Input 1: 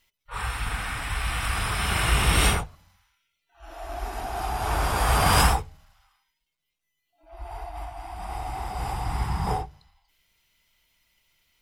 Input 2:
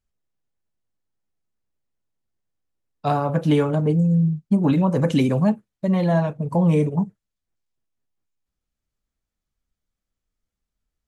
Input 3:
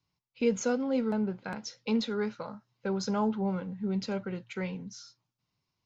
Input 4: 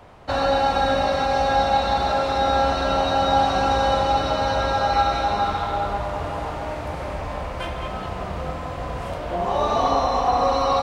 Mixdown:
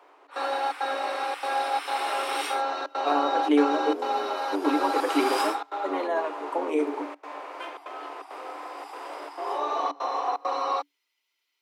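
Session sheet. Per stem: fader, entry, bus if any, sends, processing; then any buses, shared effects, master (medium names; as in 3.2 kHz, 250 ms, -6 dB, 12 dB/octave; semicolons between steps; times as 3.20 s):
-8.5 dB, 0.00 s, no send, peaking EQ 4.6 kHz +6.5 dB 1.1 oct
0.0 dB, 0.00 s, no send, octave divider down 1 oct, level 0 dB
mute
-4.5 dB, 0.00 s, no send, trance gate "xxx.xxxx.xxx" 168 bpm -24 dB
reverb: none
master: rippled Chebyshev high-pass 280 Hz, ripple 6 dB; peaking EQ 2.4 kHz +3 dB 0.55 oct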